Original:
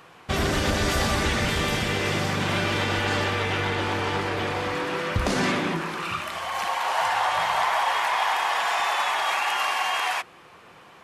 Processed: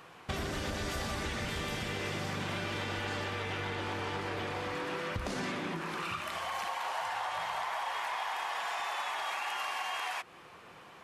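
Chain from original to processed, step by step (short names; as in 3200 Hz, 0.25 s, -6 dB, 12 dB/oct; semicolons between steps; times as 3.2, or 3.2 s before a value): compressor 5:1, threshold -30 dBFS, peak gain reduction 10 dB; gain -3.5 dB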